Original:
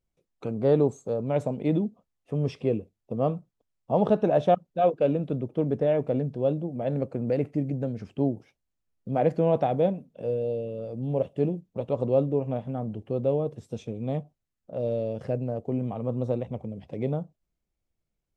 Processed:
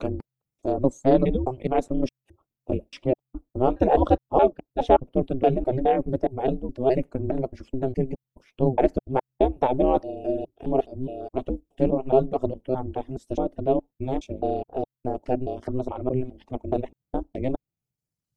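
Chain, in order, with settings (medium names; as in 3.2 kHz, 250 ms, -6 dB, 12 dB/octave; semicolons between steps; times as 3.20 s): slices played last to first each 209 ms, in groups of 3; ring modulator 130 Hz; reverb removal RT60 1.1 s; trim +7 dB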